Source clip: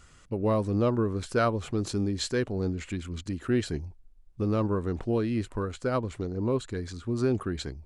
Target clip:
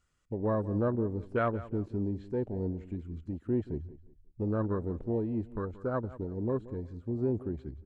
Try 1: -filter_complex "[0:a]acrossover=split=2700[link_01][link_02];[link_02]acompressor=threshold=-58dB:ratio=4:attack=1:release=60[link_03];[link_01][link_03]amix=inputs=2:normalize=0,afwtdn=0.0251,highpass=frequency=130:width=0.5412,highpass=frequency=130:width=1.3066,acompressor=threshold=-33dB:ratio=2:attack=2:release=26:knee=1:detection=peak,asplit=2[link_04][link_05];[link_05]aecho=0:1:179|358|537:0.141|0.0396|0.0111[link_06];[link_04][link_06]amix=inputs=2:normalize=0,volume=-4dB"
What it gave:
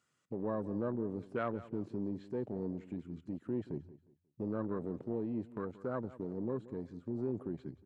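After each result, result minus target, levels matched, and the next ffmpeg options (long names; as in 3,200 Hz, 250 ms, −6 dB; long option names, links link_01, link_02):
downward compressor: peak gain reduction +7.5 dB; 125 Hz band −4.0 dB
-filter_complex "[0:a]acrossover=split=2700[link_01][link_02];[link_02]acompressor=threshold=-58dB:ratio=4:attack=1:release=60[link_03];[link_01][link_03]amix=inputs=2:normalize=0,afwtdn=0.0251,highpass=frequency=130:width=0.5412,highpass=frequency=130:width=1.3066,asplit=2[link_04][link_05];[link_05]aecho=0:1:179|358|537:0.141|0.0396|0.0111[link_06];[link_04][link_06]amix=inputs=2:normalize=0,volume=-4dB"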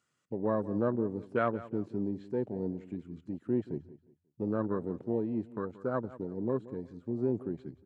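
125 Hz band −5.0 dB
-filter_complex "[0:a]acrossover=split=2700[link_01][link_02];[link_02]acompressor=threshold=-58dB:ratio=4:attack=1:release=60[link_03];[link_01][link_03]amix=inputs=2:normalize=0,afwtdn=0.0251,asplit=2[link_04][link_05];[link_05]aecho=0:1:179|358|537:0.141|0.0396|0.0111[link_06];[link_04][link_06]amix=inputs=2:normalize=0,volume=-4dB"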